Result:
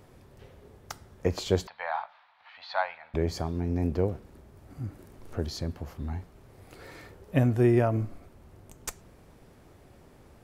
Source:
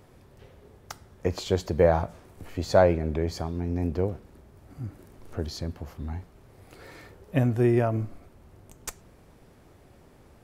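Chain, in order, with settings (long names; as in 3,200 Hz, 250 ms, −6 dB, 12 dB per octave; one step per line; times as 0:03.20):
0:01.67–0:03.14: elliptic band-pass filter 830–4,000 Hz, stop band 40 dB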